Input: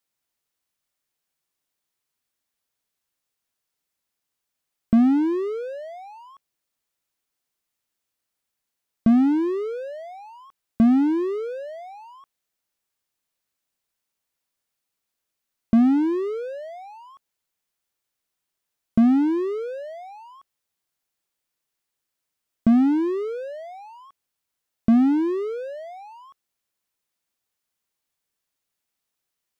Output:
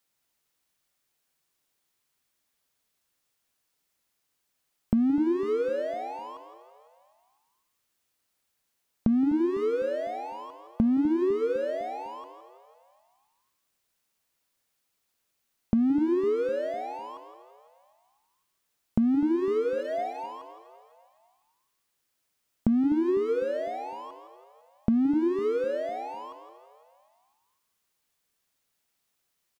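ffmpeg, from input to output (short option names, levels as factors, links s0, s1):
-filter_complex "[0:a]asoftclip=type=tanh:threshold=0.282,asplit=2[s0][s1];[s1]asplit=3[s2][s3][s4];[s2]adelay=167,afreqshift=67,volume=0.266[s5];[s3]adelay=334,afreqshift=134,volume=0.0794[s6];[s4]adelay=501,afreqshift=201,volume=0.024[s7];[s5][s6][s7]amix=inputs=3:normalize=0[s8];[s0][s8]amix=inputs=2:normalize=0,acompressor=threshold=0.0447:ratio=4,asettb=1/sr,asplit=3[s9][s10][s11];[s9]atrim=end=19.784[s12];[s10]atrim=start=19.78:end=20.26,asetpts=PTS-STARTPTS,afade=t=in:d=0.004:c=qsin,afade=t=out:st=0.476:d=0.004:c=qsin,aecho=1:1:4.3:0.71,atrim=end_sample=21168[s13];[s11]atrim=start=20.256[s14];[s12][s13]acrossfade=d=0.004:c1=hsin:c2=qsin[s15];[s15][s14]acrossfade=d=0.004:c1=qsin:c2=hsin,asplit=2[s16][s17];[s17]aecho=0:1:252|504|756|1008|1260:0.158|0.0856|0.0462|0.025|0.0135[s18];[s16][s18]amix=inputs=2:normalize=0,volume=1.58"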